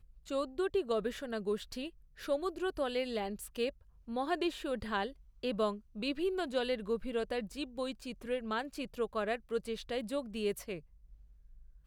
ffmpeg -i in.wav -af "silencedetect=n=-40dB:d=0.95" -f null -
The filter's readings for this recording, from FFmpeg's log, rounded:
silence_start: 10.78
silence_end: 11.86 | silence_duration: 1.08